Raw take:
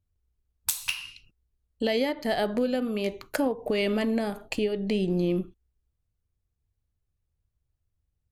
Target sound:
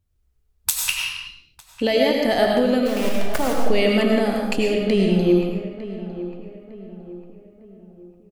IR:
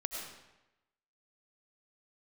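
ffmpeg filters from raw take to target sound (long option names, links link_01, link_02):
-filter_complex "[0:a]asplit=3[link_01][link_02][link_03];[link_01]afade=type=out:start_time=2.85:duration=0.02[link_04];[link_02]acrusher=bits=3:dc=4:mix=0:aa=0.000001,afade=type=in:start_time=2.85:duration=0.02,afade=type=out:start_time=3.53:duration=0.02[link_05];[link_03]afade=type=in:start_time=3.53:duration=0.02[link_06];[link_04][link_05][link_06]amix=inputs=3:normalize=0,asplit=2[link_07][link_08];[link_08]adelay=904,lowpass=frequency=1600:poles=1,volume=-13.5dB,asplit=2[link_09][link_10];[link_10]adelay=904,lowpass=frequency=1600:poles=1,volume=0.45,asplit=2[link_11][link_12];[link_12]adelay=904,lowpass=frequency=1600:poles=1,volume=0.45,asplit=2[link_13][link_14];[link_14]adelay=904,lowpass=frequency=1600:poles=1,volume=0.45[link_15];[link_07][link_09][link_11][link_13][link_15]amix=inputs=5:normalize=0[link_16];[1:a]atrim=start_sample=2205,afade=type=out:start_time=0.43:duration=0.01,atrim=end_sample=19404[link_17];[link_16][link_17]afir=irnorm=-1:irlink=0,volume=7dB"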